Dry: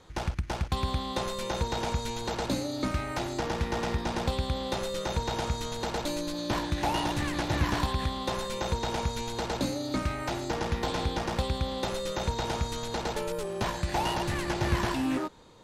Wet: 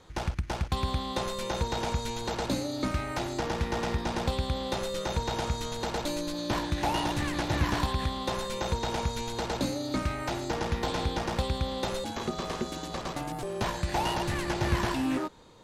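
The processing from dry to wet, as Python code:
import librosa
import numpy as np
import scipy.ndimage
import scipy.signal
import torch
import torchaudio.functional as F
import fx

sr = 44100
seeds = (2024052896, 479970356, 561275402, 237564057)

y = fx.ring_mod(x, sr, carrier_hz=300.0, at=(12.04, 13.43))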